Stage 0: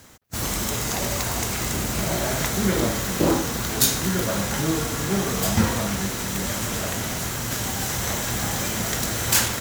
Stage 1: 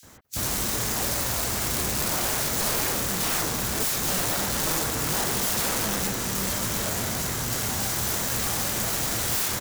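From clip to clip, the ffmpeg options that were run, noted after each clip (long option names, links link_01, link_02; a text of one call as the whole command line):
ffmpeg -i in.wav -filter_complex "[0:a]aeval=exprs='(mod(10*val(0)+1,2)-1)/10':channel_layout=same,acrossover=split=2700[link_01][link_02];[link_01]adelay=30[link_03];[link_03][link_02]amix=inputs=2:normalize=0" out.wav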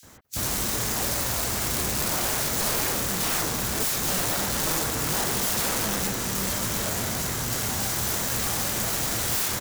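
ffmpeg -i in.wav -af anull out.wav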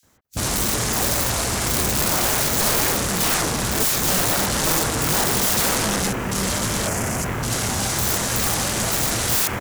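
ffmpeg -i in.wav -af "afwtdn=0.0178,volume=6.5dB" out.wav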